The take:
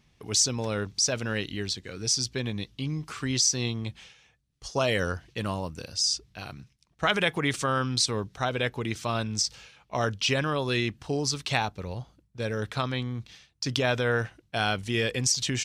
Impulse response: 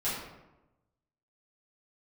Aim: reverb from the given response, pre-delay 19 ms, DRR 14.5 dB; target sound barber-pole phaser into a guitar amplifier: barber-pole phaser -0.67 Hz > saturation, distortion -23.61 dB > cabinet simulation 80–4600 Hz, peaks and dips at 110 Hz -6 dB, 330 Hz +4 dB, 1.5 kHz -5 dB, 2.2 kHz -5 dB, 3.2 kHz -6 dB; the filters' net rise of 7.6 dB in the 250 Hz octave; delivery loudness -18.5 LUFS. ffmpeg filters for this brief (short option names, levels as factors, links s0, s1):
-filter_complex "[0:a]equalizer=f=250:t=o:g=8,asplit=2[s0][s1];[1:a]atrim=start_sample=2205,adelay=19[s2];[s1][s2]afir=irnorm=-1:irlink=0,volume=0.0841[s3];[s0][s3]amix=inputs=2:normalize=0,asplit=2[s4][s5];[s5]afreqshift=-0.67[s6];[s4][s6]amix=inputs=2:normalize=1,asoftclip=threshold=0.178,highpass=80,equalizer=f=110:t=q:w=4:g=-6,equalizer=f=330:t=q:w=4:g=4,equalizer=f=1500:t=q:w=4:g=-5,equalizer=f=2200:t=q:w=4:g=-5,equalizer=f=3200:t=q:w=4:g=-6,lowpass=f=4600:w=0.5412,lowpass=f=4600:w=1.3066,volume=4.22"